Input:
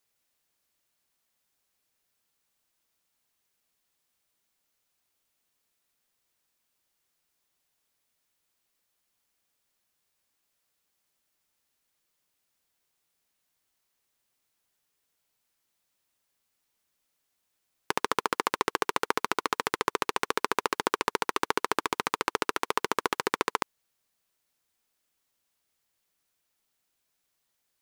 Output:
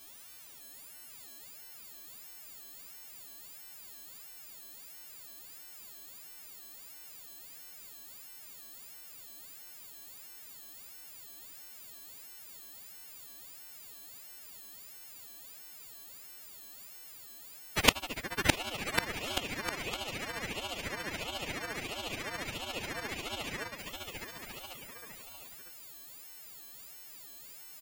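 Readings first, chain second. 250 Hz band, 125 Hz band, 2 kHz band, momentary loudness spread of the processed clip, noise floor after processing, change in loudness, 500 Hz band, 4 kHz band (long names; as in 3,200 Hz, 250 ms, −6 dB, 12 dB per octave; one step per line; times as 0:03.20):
−2.5 dB, +6.5 dB, −3.0 dB, 12 LU, −51 dBFS, −10.0 dB, −7.0 dB, +1.0 dB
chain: every partial snapped to a pitch grid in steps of 3 semitones
high-shelf EQ 4,500 Hz −7.5 dB
in parallel at +1.5 dB: brickwall limiter −17.5 dBFS, peak gain reduction 6.5 dB
on the sum: echo ahead of the sound 117 ms −21 dB
gate with flip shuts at −15 dBFS, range −31 dB
on a send: bouncing-ball delay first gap 610 ms, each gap 0.8×, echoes 5
on the sum: ring modulator whose carrier an LFO sweeps 1,200 Hz, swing 55%, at 1.5 Hz
level +15.5 dB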